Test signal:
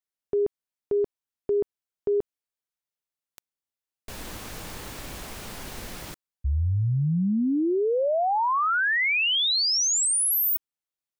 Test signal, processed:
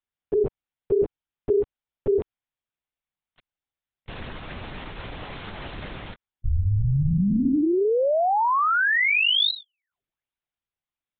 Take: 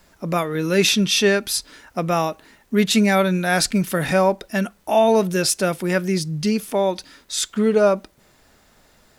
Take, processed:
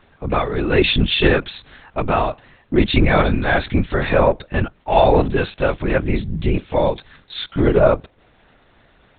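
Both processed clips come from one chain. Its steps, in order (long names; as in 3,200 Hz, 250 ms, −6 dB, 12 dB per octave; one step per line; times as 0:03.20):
linear-prediction vocoder at 8 kHz whisper
level +2.5 dB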